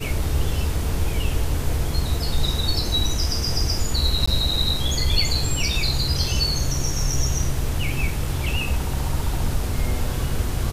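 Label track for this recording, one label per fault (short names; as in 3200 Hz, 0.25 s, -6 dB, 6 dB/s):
4.260000	4.280000	gap 15 ms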